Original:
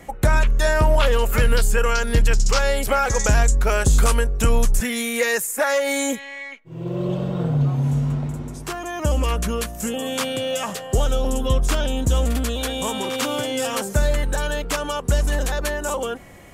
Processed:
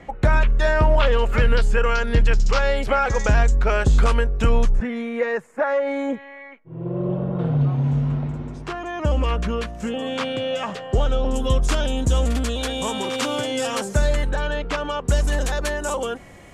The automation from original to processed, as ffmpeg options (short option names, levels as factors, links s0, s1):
-af "asetnsamples=n=441:p=0,asendcmd='4.7 lowpass f 1400;7.39 lowpass f 3400;11.34 lowpass f 8100;14.29 lowpass f 3500;15.08 lowpass f 9200',lowpass=3600"